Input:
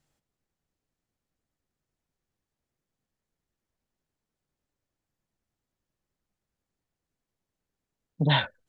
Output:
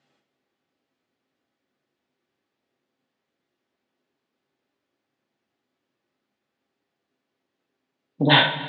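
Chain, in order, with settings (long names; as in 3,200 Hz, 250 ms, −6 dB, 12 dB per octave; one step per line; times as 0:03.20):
Chebyshev band-pass filter 250–3,500 Hz, order 2
coupled-rooms reverb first 0.47 s, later 4.4 s, from −18 dB, DRR 1.5 dB
level +8.5 dB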